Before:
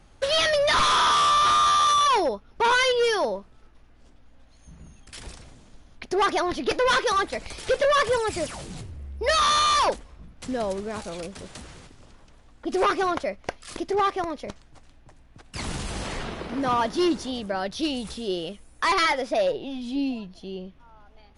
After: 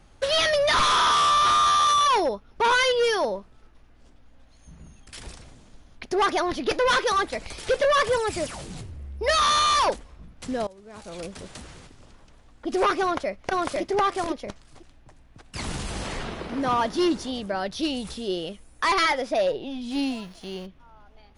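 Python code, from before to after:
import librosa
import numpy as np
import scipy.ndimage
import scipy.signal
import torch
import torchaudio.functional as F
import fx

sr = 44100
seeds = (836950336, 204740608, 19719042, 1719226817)

y = fx.echo_throw(x, sr, start_s=13.01, length_s=0.81, ms=500, feedback_pct=10, wet_db=-0.5)
y = fx.envelope_flatten(y, sr, power=0.6, at=(19.9, 20.65), fade=0.02)
y = fx.edit(y, sr, fx.fade_in_from(start_s=10.67, length_s=0.57, curve='qua', floor_db=-20.5), tone=tone)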